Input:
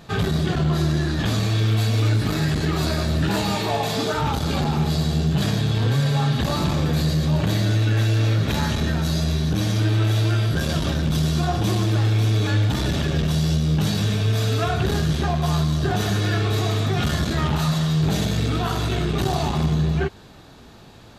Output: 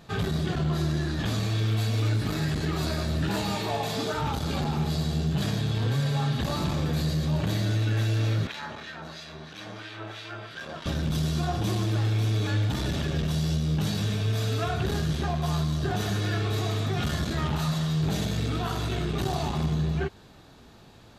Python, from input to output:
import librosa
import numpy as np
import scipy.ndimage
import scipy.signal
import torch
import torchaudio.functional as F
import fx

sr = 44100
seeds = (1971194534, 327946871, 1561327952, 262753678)

y = fx.filter_lfo_bandpass(x, sr, shape='sine', hz=3.0, low_hz=840.0, high_hz=2500.0, q=0.93, at=(8.47, 10.86))
y = y * librosa.db_to_amplitude(-6.0)